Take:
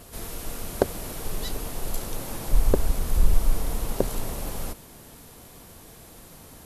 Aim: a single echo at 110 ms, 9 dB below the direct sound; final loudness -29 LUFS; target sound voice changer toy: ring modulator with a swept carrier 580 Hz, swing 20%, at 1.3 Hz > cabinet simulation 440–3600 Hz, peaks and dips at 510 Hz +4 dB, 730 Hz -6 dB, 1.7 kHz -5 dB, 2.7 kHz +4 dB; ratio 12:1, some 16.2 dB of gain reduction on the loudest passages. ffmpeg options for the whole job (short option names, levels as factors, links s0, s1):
-af "acompressor=threshold=0.0447:ratio=12,aecho=1:1:110:0.355,aeval=exprs='val(0)*sin(2*PI*580*n/s+580*0.2/1.3*sin(2*PI*1.3*n/s))':c=same,highpass=440,equalizer=f=510:t=q:w=4:g=4,equalizer=f=730:t=q:w=4:g=-6,equalizer=f=1700:t=q:w=4:g=-5,equalizer=f=2700:t=q:w=4:g=4,lowpass=f=3600:w=0.5412,lowpass=f=3600:w=1.3066,volume=2.24"